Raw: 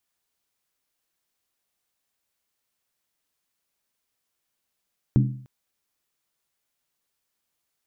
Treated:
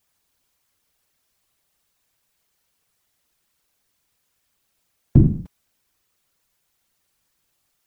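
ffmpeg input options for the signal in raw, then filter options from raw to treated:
-f lavfi -i "aevalsrc='0.224*pow(10,-3*t/0.55)*sin(2*PI*129*t)+0.126*pow(10,-3*t/0.436)*sin(2*PI*205.6*t)+0.0708*pow(10,-3*t/0.376)*sin(2*PI*275.5*t)+0.0398*pow(10,-3*t/0.363)*sin(2*PI*296.2*t)+0.0224*pow(10,-3*t/0.338)*sin(2*PI*342.2*t)':duration=0.3:sample_rate=44100"
-af "lowshelf=frequency=80:gain=11,afftfilt=real='hypot(re,im)*cos(2*PI*random(0))':imag='hypot(re,im)*sin(2*PI*random(1))':win_size=512:overlap=0.75,alimiter=level_in=14dB:limit=-1dB:release=50:level=0:latency=1"

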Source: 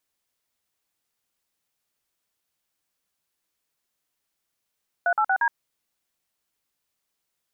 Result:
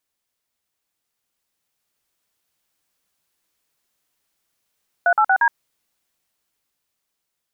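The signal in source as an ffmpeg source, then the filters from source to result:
-f lavfi -i "aevalsrc='0.0891*clip(min(mod(t,0.117),0.069-mod(t,0.117))/0.002,0,1)*(eq(floor(t/0.117),0)*(sin(2*PI*697*mod(t,0.117))+sin(2*PI*1477*mod(t,0.117)))+eq(floor(t/0.117),1)*(sin(2*PI*852*mod(t,0.117))+sin(2*PI*1336*mod(t,0.117)))+eq(floor(t/0.117),2)*(sin(2*PI*770*mod(t,0.117))+sin(2*PI*1477*mod(t,0.117)))+eq(floor(t/0.117),3)*(sin(2*PI*941*mod(t,0.117))+sin(2*PI*1633*mod(t,0.117))))':duration=0.468:sample_rate=44100"
-af "dynaudnorm=framelen=530:gausssize=7:maxgain=6dB"

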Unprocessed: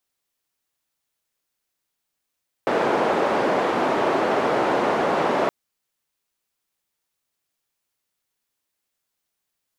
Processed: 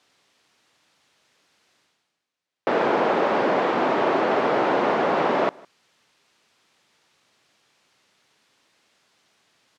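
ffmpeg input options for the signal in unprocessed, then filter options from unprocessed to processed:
-f lavfi -i "anoisesrc=color=white:duration=2.82:sample_rate=44100:seed=1,highpass=frequency=320,lowpass=frequency=720,volume=0.6dB"
-filter_complex "[0:a]areverse,acompressor=mode=upward:threshold=-41dB:ratio=2.5,areverse,highpass=120,lowpass=4800,asplit=2[link_01][link_02];[link_02]adelay=157.4,volume=-25dB,highshelf=frequency=4000:gain=-3.54[link_03];[link_01][link_03]amix=inputs=2:normalize=0"

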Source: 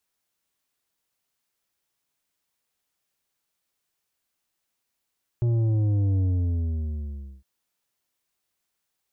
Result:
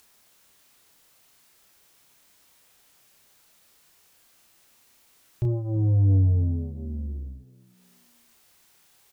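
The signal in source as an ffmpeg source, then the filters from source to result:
-f lavfi -i "aevalsrc='0.0944*clip((2.01-t)/1.24,0,1)*tanh(2.51*sin(2*PI*120*2.01/log(65/120)*(exp(log(65/120)*t/2.01)-1)))/tanh(2.51)':duration=2.01:sample_rate=44100"
-filter_complex "[0:a]acompressor=mode=upward:threshold=-46dB:ratio=2.5,asplit=2[link_01][link_02];[link_02]adelay=31,volume=-3.5dB[link_03];[link_01][link_03]amix=inputs=2:normalize=0,asplit=4[link_04][link_05][link_06][link_07];[link_05]adelay=323,afreqshift=56,volume=-21.5dB[link_08];[link_06]adelay=646,afreqshift=112,volume=-29.5dB[link_09];[link_07]adelay=969,afreqshift=168,volume=-37.4dB[link_10];[link_04][link_08][link_09][link_10]amix=inputs=4:normalize=0"

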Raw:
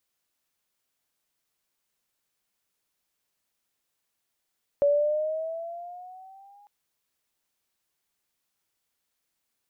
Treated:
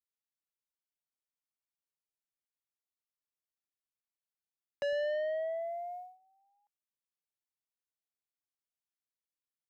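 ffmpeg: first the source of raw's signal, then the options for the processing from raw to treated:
-f lavfi -i "aevalsrc='pow(10,(-17-35*t/1.85)/20)*sin(2*PI*568*1.85/(6.5*log(2)/12)*(exp(6.5*log(2)/12*t/1.85)-1))':duration=1.85:sample_rate=44100"
-filter_complex "[0:a]agate=range=-22dB:threshold=-43dB:ratio=16:detection=peak,acrossover=split=220[link_01][link_02];[link_01]asplit=6[link_03][link_04][link_05][link_06][link_07][link_08];[link_04]adelay=103,afreqshift=-100,volume=-7.5dB[link_09];[link_05]adelay=206,afreqshift=-200,volume=-14.8dB[link_10];[link_06]adelay=309,afreqshift=-300,volume=-22.2dB[link_11];[link_07]adelay=412,afreqshift=-400,volume=-29.5dB[link_12];[link_08]adelay=515,afreqshift=-500,volume=-36.8dB[link_13];[link_03][link_09][link_10][link_11][link_12][link_13]amix=inputs=6:normalize=0[link_14];[link_02]asoftclip=type=tanh:threshold=-31.5dB[link_15];[link_14][link_15]amix=inputs=2:normalize=0"

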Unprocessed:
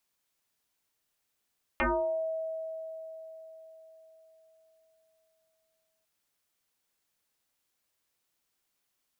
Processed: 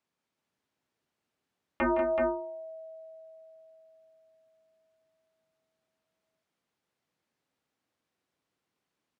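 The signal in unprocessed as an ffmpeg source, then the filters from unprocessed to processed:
-f lavfi -i "aevalsrc='0.0668*pow(10,-3*t/4.48)*sin(2*PI*644*t+7.1*pow(10,-3*t/0.53)*sin(2*PI*0.46*644*t))':duration=4.25:sample_rate=44100"
-filter_complex "[0:a]highpass=190,aemphasis=mode=reproduction:type=riaa,asplit=2[link_01][link_02];[link_02]aecho=0:1:164|191|378:0.299|0.447|0.562[link_03];[link_01][link_03]amix=inputs=2:normalize=0"

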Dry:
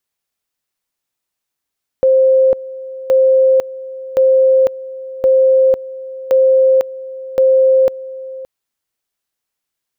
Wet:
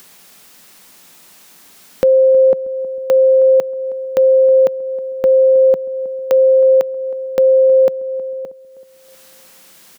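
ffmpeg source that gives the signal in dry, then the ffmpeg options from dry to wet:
-f lavfi -i "aevalsrc='pow(10,(-7-18*gte(mod(t,1.07),0.5))/20)*sin(2*PI*526*t)':duration=6.42:sample_rate=44100"
-filter_complex "[0:a]lowshelf=frequency=140:width_type=q:width=3:gain=-6.5,acompressor=mode=upward:threshold=-17dB:ratio=2.5,asplit=2[link_01][link_02];[link_02]adelay=317,lowpass=frequency=820:poles=1,volume=-16dB,asplit=2[link_03][link_04];[link_04]adelay=317,lowpass=frequency=820:poles=1,volume=0.53,asplit=2[link_05][link_06];[link_06]adelay=317,lowpass=frequency=820:poles=1,volume=0.53,asplit=2[link_07][link_08];[link_08]adelay=317,lowpass=frequency=820:poles=1,volume=0.53,asplit=2[link_09][link_10];[link_10]adelay=317,lowpass=frequency=820:poles=1,volume=0.53[link_11];[link_01][link_03][link_05][link_07][link_09][link_11]amix=inputs=6:normalize=0"

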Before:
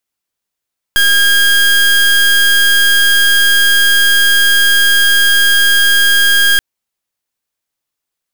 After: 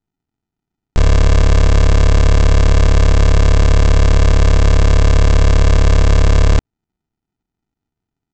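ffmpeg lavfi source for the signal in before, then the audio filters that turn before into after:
-f lavfi -i "aevalsrc='0.355*(2*lt(mod(1620*t,1),0.27)-1)':duration=5.63:sample_rate=44100"
-af "highshelf=frequency=5700:gain=10.5,aresample=16000,acrusher=samples=29:mix=1:aa=0.000001,aresample=44100"

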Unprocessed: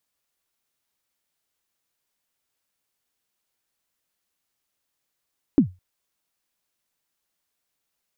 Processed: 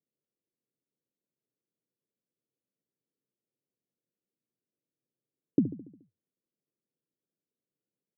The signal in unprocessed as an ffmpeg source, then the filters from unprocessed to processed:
-f lavfi -i "aevalsrc='0.422*pow(10,-3*t/0.24)*sin(2*PI*(320*0.098/log(91/320)*(exp(log(91/320)*min(t,0.098)/0.098)-1)+91*max(t-0.098,0)))':duration=0.21:sample_rate=44100"
-af "acompressor=threshold=-21dB:ratio=4,asuperpass=centerf=240:order=8:qfactor=0.62,aecho=1:1:71|142|213|284|355|426:0.224|0.123|0.0677|0.0372|0.0205|0.0113"

